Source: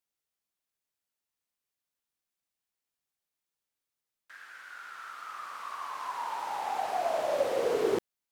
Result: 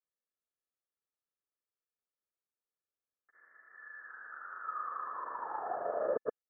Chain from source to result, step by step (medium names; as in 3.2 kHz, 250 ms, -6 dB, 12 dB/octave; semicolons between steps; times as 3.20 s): rippled Chebyshev low-pass 1.4 kHz, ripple 9 dB; granulator, pitch spread up and down by 0 st; wide varispeed 1.28×